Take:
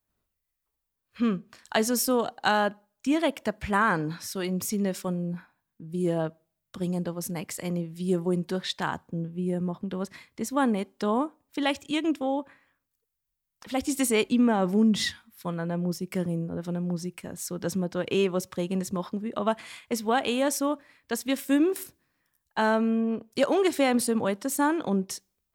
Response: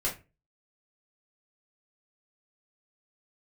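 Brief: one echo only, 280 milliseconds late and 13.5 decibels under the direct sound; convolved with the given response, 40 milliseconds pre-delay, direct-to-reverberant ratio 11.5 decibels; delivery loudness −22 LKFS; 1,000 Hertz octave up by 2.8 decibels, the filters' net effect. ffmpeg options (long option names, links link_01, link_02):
-filter_complex "[0:a]equalizer=frequency=1000:width_type=o:gain=3.5,aecho=1:1:280:0.211,asplit=2[link_01][link_02];[1:a]atrim=start_sample=2205,adelay=40[link_03];[link_02][link_03]afir=irnorm=-1:irlink=0,volume=-17.5dB[link_04];[link_01][link_04]amix=inputs=2:normalize=0,volume=5dB"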